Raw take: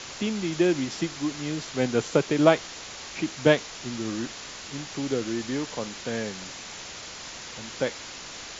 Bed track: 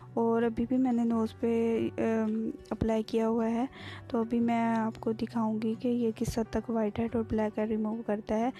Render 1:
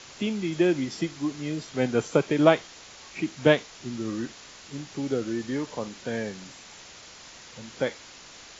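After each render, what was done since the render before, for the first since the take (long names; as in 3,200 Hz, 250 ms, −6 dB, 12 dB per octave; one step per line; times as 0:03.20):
noise reduction from a noise print 7 dB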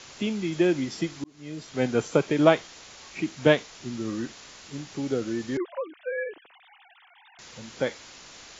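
0:01.24–0:01.82: fade in
0:05.57–0:07.39: three sine waves on the formant tracks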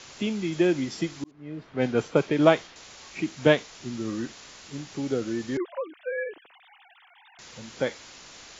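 0:01.31–0:02.76: low-pass that shuts in the quiet parts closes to 1,500 Hz, open at −14.5 dBFS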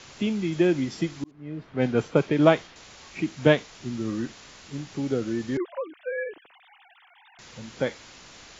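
bass and treble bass +4 dB, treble −3 dB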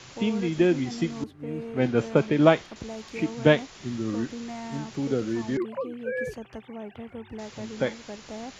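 mix in bed track −9 dB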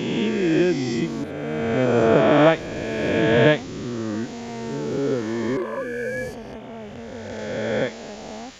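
peak hold with a rise ahead of every peak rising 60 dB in 2.41 s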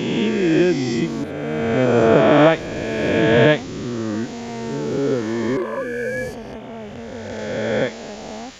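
level +3 dB
brickwall limiter −1 dBFS, peak gain reduction 2.5 dB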